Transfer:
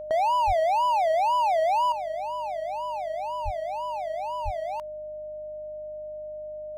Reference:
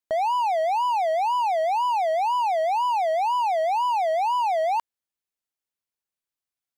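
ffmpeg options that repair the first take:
ffmpeg -i in.wav -filter_complex "[0:a]bandreject=frequency=50:width_type=h:width=4,bandreject=frequency=100:width_type=h:width=4,bandreject=frequency=150:width_type=h:width=4,bandreject=frequency=200:width_type=h:width=4,bandreject=frequency=250:width_type=h:width=4,bandreject=frequency=300:width_type=h:width=4,bandreject=frequency=610:width=30,asplit=3[link_01][link_02][link_03];[link_01]afade=type=out:start_time=0.46:duration=0.02[link_04];[link_02]highpass=frequency=140:width=0.5412,highpass=frequency=140:width=1.3066,afade=type=in:start_time=0.46:duration=0.02,afade=type=out:start_time=0.58:duration=0.02[link_05];[link_03]afade=type=in:start_time=0.58:duration=0.02[link_06];[link_04][link_05][link_06]amix=inputs=3:normalize=0,asplit=3[link_07][link_08][link_09];[link_07]afade=type=out:start_time=3.44:duration=0.02[link_10];[link_08]highpass=frequency=140:width=0.5412,highpass=frequency=140:width=1.3066,afade=type=in:start_time=3.44:duration=0.02,afade=type=out:start_time=3.56:duration=0.02[link_11];[link_09]afade=type=in:start_time=3.56:duration=0.02[link_12];[link_10][link_11][link_12]amix=inputs=3:normalize=0,asplit=3[link_13][link_14][link_15];[link_13]afade=type=out:start_time=4.44:duration=0.02[link_16];[link_14]highpass=frequency=140:width=0.5412,highpass=frequency=140:width=1.3066,afade=type=in:start_time=4.44:duration=0.02,afade=type=out:start_time=4.56:duration=0.02[link_17];[link_15]afade=type=in:start_time=4.56:duration=0.02[link_18];[link_16][link_17][link_18]amix=inputs=3:normalize=0,asetnsamples=nb_out_samples=441:pad=0,asendcmd='1.92 volume volume 9.5dB',volume=0dB" out.wav

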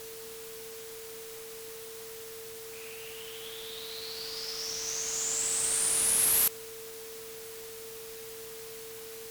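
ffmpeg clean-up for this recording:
ffmpeg -i in.wav -af "bandreject=frequency=118.9:width_type=h:width=4,bandreject=frequency=237.8:width_type=h:width=4,bandreject=frequency=356.7:width_type=h:width=4,bandreject=frequency=475.6:width_type=h:width=4,bandreject=frequency=450:width=30,afwtdn=0.005" out.wav

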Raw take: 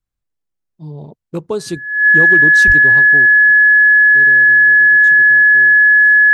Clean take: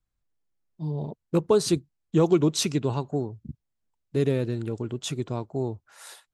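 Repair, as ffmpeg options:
ffmpeg -i in.wav -filter_complex "[0:a]bandreject=frequency=1700:width=30,asplit=3[link_01][link_02][link_03];[link_01]afade=type=out:start_time=2.66:duration=0.02[link_04];[link_02]highpass=frequency=140:width=0.5412,highpass=frequency=140:width=1.3066,afade=type=in:start_time=2.66:duration=0.02,afade=type=out:start_time=2.78:duration=0.02[link_05];[link_03]afade=type=in:start_time=2.78:duration=0.02[link_06];[link_04][link_05][link_06]amix=inputs=3:normalize=0,asetnsamples=nb_out_samples=441:pad=0,asendcmd='3.26 volume volume 10.5dB',volume=0dB" out.wav

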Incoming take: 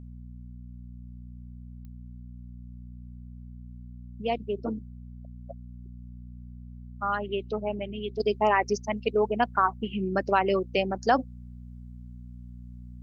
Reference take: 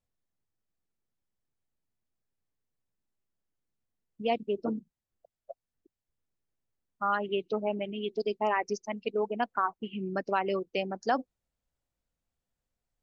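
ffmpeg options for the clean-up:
ffmpeg -i in.wav -af "adeclick=threshold=4,bandreject=frequency=60.6:width_type=h:width=4,bandreject=frequency=121.2:width_type=h:width=4,bandreject=frequency=181.8:width_type=h:width=4,bandreject=frequency=242.4:width_type=h:width=4,asetnsamples=nb_out_samples=441:pad=0,asendcmd='8.2 volume volume -5.5dB',volume=0dB" out.wav

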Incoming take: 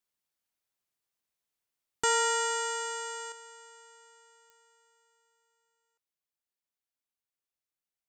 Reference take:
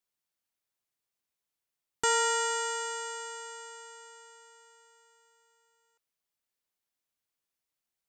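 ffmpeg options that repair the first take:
ffmpeg -i in.wav -af "adeclick=threshold=4,asetnsamples=nb_out_samples=441:pad=0,asendcmd='3.32 volume volume 7dB',volume=0dB" out.wav

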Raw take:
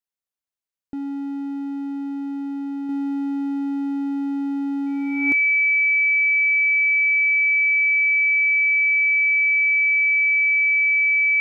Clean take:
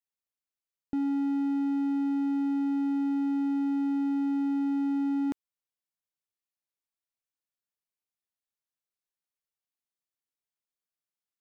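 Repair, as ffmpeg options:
ffmpeg -i in.wav -af "bandreject=frequency=2300:width=30,asetnsamples=nb_out_samples=441:pad=0,asendcmd='2.89 volume volume -3.5dB',volume=0dB" out.wav

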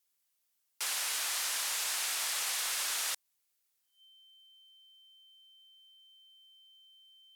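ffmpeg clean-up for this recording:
ffmpeg -i in.wav -af "bandreject=frequency=3100:width=30,agate=range=-21dB:threshold=-71dB" out.wav

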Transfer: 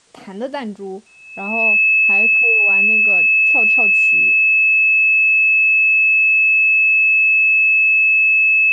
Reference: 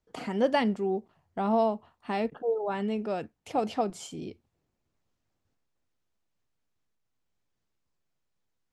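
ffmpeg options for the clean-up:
ffmpeg -i in.wav -af "bandreject=frequency=2600:width=30,agate=range=-21dB:threshold=-23dB" out.wav

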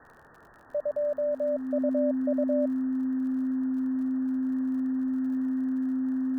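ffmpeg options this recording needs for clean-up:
ffmpeg -i in.wav -af "adeclick=threshold=4,bandreject=frequency=260:width=30,afftdn=noise_reduction=21:noise_floor=-54" out.wav

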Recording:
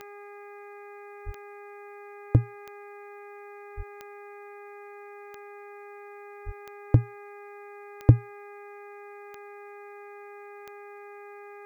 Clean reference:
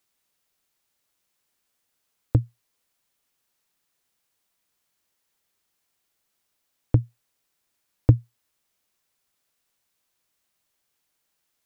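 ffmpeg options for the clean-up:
ffmpeg -i in.wav -filter_complex "[0:a]adeclick=threshold=4,bandreject=frequency=408.6:width_type=h:width=4,bandreject=frequency=817.2:width_type=h:width=4,bandreject=frequency=1225.8:width_type=h:width=4,bandreject=frequency=1634.4:width_type=h:width=4,bandreject=frequency=2043:width_type=h:width=4,bandreject=frequency=2451.6:width_type=h:width=4,asplit=3[link_01][link_02][link_03];[link_01]afade=type=out:start_time=1.25:duration=0.02[link_04];[link_02]highpass=frequency=140:width=0.5412,highpass=frequency=140:width=1.3066,afade=type=in:start_time=1.25:duration=0.02,afade=type=out:start_time=1.37:duration=0.02[link_05];[link_03]afade=type=in:start_time=1.37:duration=0.02[link_06];[link_04][link_05][link_06]amix=inputs=3:normalize=0,asplit=3[link_07][link_08][link_09];[link_07]afade=type=out:start_time=3.76:duration=0.02[link_10];[link_08]highpass=frequency=140:width=0.5412,highpass=frequency=140:width=1.3066,afade=type=in:start_time=3.76:duration=0.02,afade=type=out:start_time=3.88:duration=0.02[link_11];[link_09]afade=type=in:start_time=3.88:duration=0.02[link_12];[link_10][link_11][link_12]amix=inputs=3:normalize=0,asplit=3[link_13][link_14][link_15];[link_13]afade=type=out:start_time=6.45:duration=0.02[link_16];[link_14]highpass=frequency=140:width=0.5412,highpass=frequency=140:width=1.3066,afade=type=in:start_time=6.45:duration=0.02,afade=type=out:start_time=6.57:duration=0.02[link_17];[link_15]afade=type=in:start_time=6.57:duration=0.02[link_18];[link_16][link_17][link_18]amix=inputs=3:normalize=0" out.wav

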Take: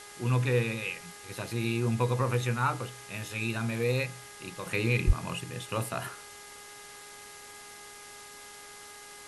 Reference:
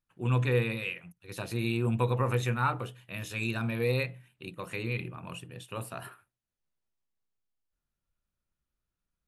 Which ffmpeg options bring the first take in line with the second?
ffmpeg -i in.wav -filter_complex "[0:a]bandreject=frequency=411.3:width_type=h:width=4,bandreject=frequency=822.6:width_type=h:width=4,bandreject=frequency=1233.9:width_type=h:width=4,bandreject=frequency=1645.2:width_type=h:width=4,bandreject=frequency=2056.5:width_type=h:width=4,asplit=3[link_01][link_02][link_03];[link_01]afade=type=out:start_time=5.06:duration=0.02[link_04];[link_02]highpass=frequency=140:width=0.5412,highpass=frequency=140:width=1.3066,afade=type=in:start_time=5.06:duration=0.02,afade=type=out:start_time=5.18:duration=0.02[link_05];[link_03]afade=type=in:start_time=5.18:duration=0.02[link_06];[link_04][link_05][link_06]amix=inputs=3:normalize=0,afwtdn=0.0045,asetnsamples=nb_out_samples=441:pad=0,asendcmd='4.66 volume volume -6dB',volume=0dB" out.wav

